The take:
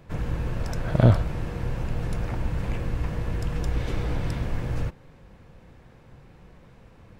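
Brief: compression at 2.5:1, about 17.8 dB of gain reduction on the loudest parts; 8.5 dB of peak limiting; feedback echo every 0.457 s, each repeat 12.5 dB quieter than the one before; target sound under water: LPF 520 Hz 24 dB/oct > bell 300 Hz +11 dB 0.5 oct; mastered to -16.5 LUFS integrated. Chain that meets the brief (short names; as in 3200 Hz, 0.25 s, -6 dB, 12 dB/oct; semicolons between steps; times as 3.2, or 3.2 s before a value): compressor 2.5:1, threshold -39 dBFS; limiter -31 dBFS; LPF 520 Hz 24 dB/oct; bell 300 Hz +11 dB 0.5 oct; feedback echo 0.457 s, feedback 24%, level -12.5 dB; gain +25.5 dB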